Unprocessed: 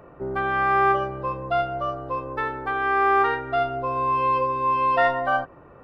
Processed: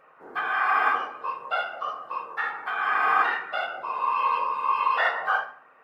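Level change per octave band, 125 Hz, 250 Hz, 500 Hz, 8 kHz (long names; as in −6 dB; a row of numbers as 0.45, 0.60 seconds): below −25 dB, −16.5 dB, −12.0 dB, can't be measured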